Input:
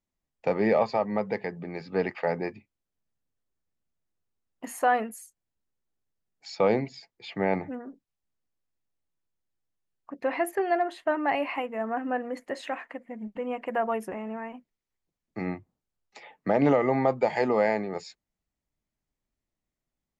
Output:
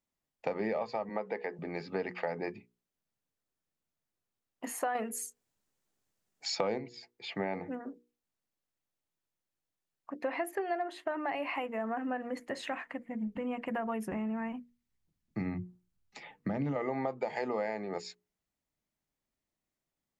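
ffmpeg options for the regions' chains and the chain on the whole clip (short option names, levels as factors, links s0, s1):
-filter_complex "[0:a]asettb=1/sr,asplit=3[s0][s1][s2];[s0]atrim=end=1.094[s3];[s1]atrim=start=1.09:end=1.59,asetpts=PTS-STARTPTS,afade=t=in:d=0.004:c=qsin,afade=t=out:st=0.496:d=0.004:c=qsin,highpass=290,lowpass=7700,acrossover=split=2800[s4][s5];[s5]acompressor=threshold=0.00178:ratio=4:attack=1:release=60[s6];[s4][s6]amix=inputs=2:normalize=0[s7];[s2]atrim=start=1.586[s8];[s3][s7]acrossfade=d=0.004:c1=hsin:c2=qsin[s9];[s9][s8]acrossfade=d=0.004:c1=qsin:c2=hsin,asettb=1/sr,asplit=3[s10][s11][s12];[s10]atrim=end=4.954[s13];[s11]atrim=start=4.95:end=6.78,asetpts=PTS-STARTPTS,afade=t=in:d=0.004:c=qsin,afade=t=out:st=1.826:d=0.004:c=qsin,equalizer=f=7200:w=1.5:g=3.5,acontrast=75[s14];[s12]atrim=start=6.776[s15];[s13][s14]acrossfade=d=0.004:c1=hsin:c2=qsin[s16];[s16][s15]acrossfade=d=0.004:c1=qsin:c2=hsin,asettb=1/sr,asplit=3[s17][s18][s19];[s17]atrim=end=11.064[s20];[s18]atrim=start=11.06:end=16.76,asetpts=PTS-STARTPTS,afade=t=in:d=0.004:c=qsin,afade=t=out:st=5.696:d=0.004:c=qsin,asubboost=boost=7.5:cutoff=190,acompressor=threshold=0.0316:ratio=1.5:attack=3.2:release=140:knee=1:detection=peak[s21];[s19]atrim=start=16.756[s22];[s20][s21]acrossfade=d=0.004:c1=hsin:c2=qsin[s23];[s23][s22]acrossfade=d=0.004:c1=qsin:c2=hsin,lowshelf=f=79:g=-11,bandreject=f=60:t=h:w=6,bandreject=f=120:t=h:w=6,bandreject=f=180:t=h:w=6,bandreject=f=240:t=h:w=6,bandreject=f=300:t=h:w=6,bandreject=f=360:t=h:w=6,bandreject=f=420:t=h:w=6,bandreject=f=480:t=h:w=6,acompressor=threshold=0.0282:ratio=5"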